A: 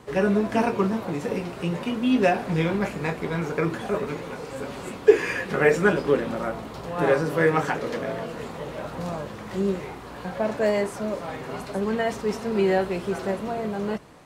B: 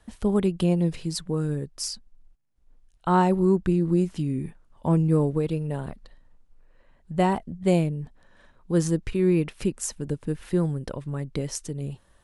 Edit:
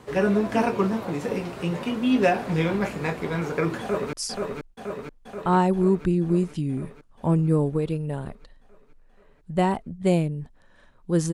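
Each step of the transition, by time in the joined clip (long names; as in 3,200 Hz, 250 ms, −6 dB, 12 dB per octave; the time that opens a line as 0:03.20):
A
0:03.81–0:04.13: delay throw 480 ms, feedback 70%, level −3.5 dB
0:04.13: continue with B from 0:01.74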